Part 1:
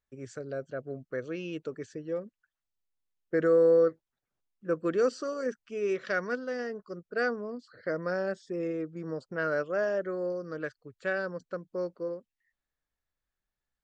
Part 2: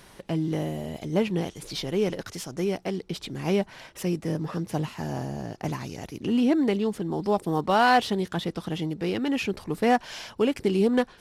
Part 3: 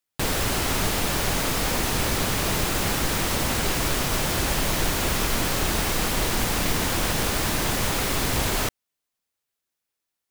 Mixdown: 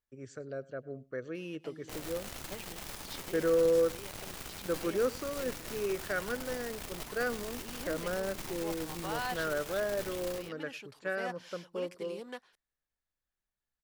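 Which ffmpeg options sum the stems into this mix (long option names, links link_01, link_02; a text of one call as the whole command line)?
ffmpeg -i stem1.wav -i stem2.wav -i stem3.wav -filter_complex "[0:a]volume=-4dB,asplit=2[link_01][link_02];[link_02]volume=-22.5dB[link_03];[1:a]highpass=frequency=1100:poles=1,adelay=1350,volume=-13dB[link_04];[2:a]alimiter=limit=-18dB:level=0:latency=1:release=67,acrusher=bits=3:mix=0:aa=0.5,aeval=exprs='(tanh(25.1*val(0)+0.65)-tanh(0.65))/25.1':channel_layout=same,adelay=1700,volume=-9dB,asplit=2[link_05][link_06];[link_06]volume=-6.5dB[link_07];[link_03][link_07]amix=inputs=2:normalize=0,aecho=0:1:102:1[link_08];[link_01][link_04][link_05][link_08]amix=inputs=4:normalize=0" out.wav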